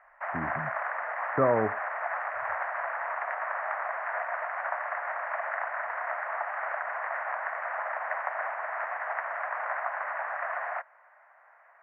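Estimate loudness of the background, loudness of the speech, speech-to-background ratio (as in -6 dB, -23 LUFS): -32.5 LUFS, -30.0 LUFS, 2.5 dB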